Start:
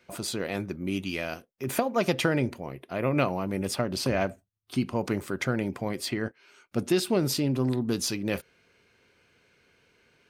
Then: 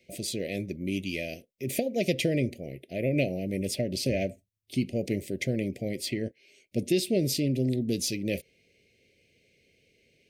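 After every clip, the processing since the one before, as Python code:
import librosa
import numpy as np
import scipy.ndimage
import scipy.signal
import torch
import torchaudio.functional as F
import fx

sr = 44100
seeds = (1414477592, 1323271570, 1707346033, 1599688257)

y = scipy.signal.sosfilt(scipy.signal.ellip(3, 1.0, 60, [610.0, 2100.0], 'bandstop', fs=sr, output='sos'), x)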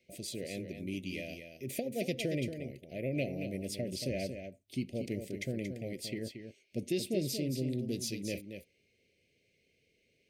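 y = x + 10.0 ** (-8.0 / 20.0) * np.pad(x, (int(229 * sr / 1000.0), 0))[:len(x)]
y = y * librosa.db_to_amplitude(-8.0)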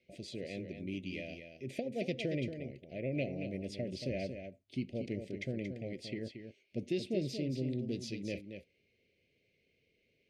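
y = scipy.signal.sosfilt(scipy.signal.butter(2, 4100.0, 'lowpass', fs=sr, output='sos'), x)
y = y * librosa.db_to_amplitude(-1.5)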